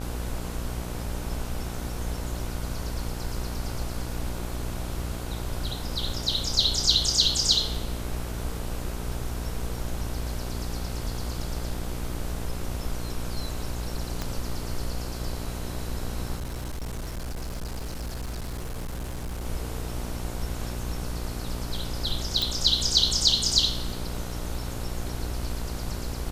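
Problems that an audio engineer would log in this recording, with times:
mains buzz 60 Hz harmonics 26 −34 dBFS
0:14.22: click −15 dBFS
0:16.36–0:19.45: clipping −29.5 dBFS
0:22.42: click

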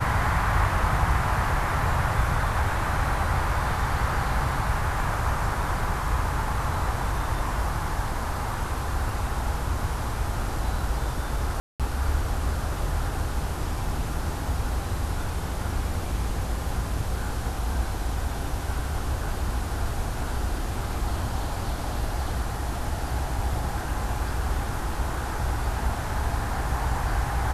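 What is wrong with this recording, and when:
0:11.60–0:11.80: drop-out 197 ms

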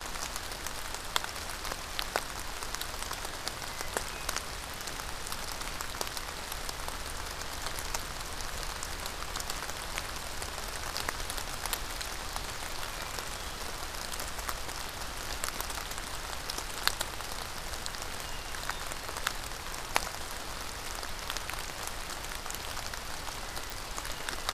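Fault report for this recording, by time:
0:23.70: click

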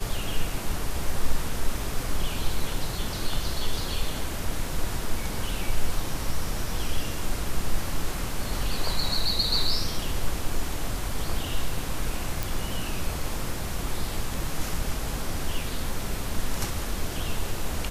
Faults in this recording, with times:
0:12.43: click

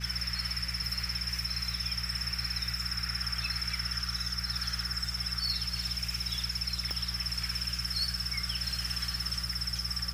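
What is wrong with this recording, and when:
surface crackle 25 per second −41 dBFS
mains hum 60 Hz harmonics 3 −39 dBFS
0:06.91: click −21 dBFS

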